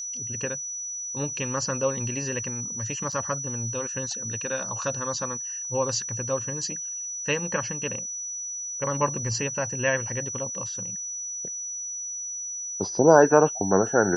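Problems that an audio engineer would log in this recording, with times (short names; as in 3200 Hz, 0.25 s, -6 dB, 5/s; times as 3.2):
tone 5900 Hz -31 dBFS
3.12 gap 4.4 ms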